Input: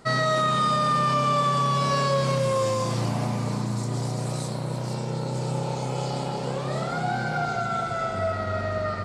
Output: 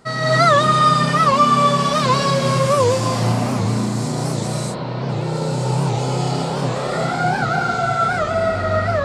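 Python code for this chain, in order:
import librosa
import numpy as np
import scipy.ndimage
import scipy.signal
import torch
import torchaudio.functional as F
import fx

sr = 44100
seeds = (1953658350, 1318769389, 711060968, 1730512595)

y = fx.lowpass(x, sr, hz=3900.0, slope=24, at=(4.47, 5.09), fade=0.02)
y = fx.rev_gated(y, sr, seeds[0], gate_ms=280, shape='rising', drr_db=-7.5)
y = fx.record_warp(y, sr, rpm=78.0, depth_cents=160.0)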